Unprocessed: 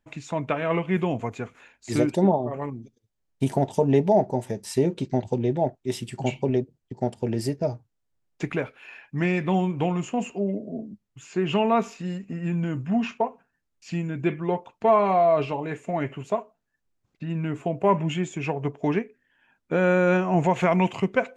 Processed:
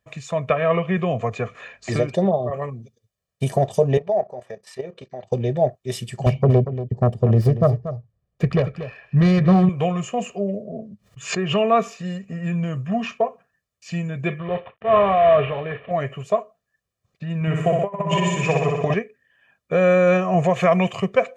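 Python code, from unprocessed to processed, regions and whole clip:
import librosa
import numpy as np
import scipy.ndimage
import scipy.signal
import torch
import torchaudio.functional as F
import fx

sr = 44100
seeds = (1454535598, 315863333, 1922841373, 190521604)

y = fx.chain(x, sr, fx.air_absorb(metres=81.0),
    fx.band_squash(depth_pct=70), at=(0.49, 2.5))
y = fx.chain(y, sr, fx.bandpass_q(hz=1200.0, q=0.59),
    fx.level_steps(step_db=12), at=(3.97, 5.32))
y = fx.chain(y, sr, fx.self_delay(depth_ms=0.38),
    fx.tilt_eq(slope=-3.5),
    fx.echo_single(ms=235, db=-12.0), at=(6.26, 9.69))
y = fx.chain(y, sr, fx.high_shelf(hz=8300.0, db=-9.5),
    fx.pre_swell(db_per_s=140.0), at=(10.62, 11.58))
y = fx.chain(y, sr, fx.cvsd(bps=16000),
    fx.transient(attack_db=-9, sustain_db=4), at=(14.39, 15.91))
y = fx.chain(y, sr, fx.small_body(hz=(1000.0, 1900.0), ring_ms=90, db=10),
    fx.room_flutter(wall_m=10.7, rt60_s=1.2),
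    fx.over_compress(threshold_db=-22.0, ratio=-0.5), at=(17.41, 18.94))
y = scipy.signal.sosfilt(scipy.signal.butter(2, 65.0, 'highpass', fs=sr, output='sos'), y)
y = y + 0.77 * np.pad(y, (int(1.7 * sr / 1000.0), 0))[:len(y)]
y = y * 10.0 ** (2.0 / 20.0)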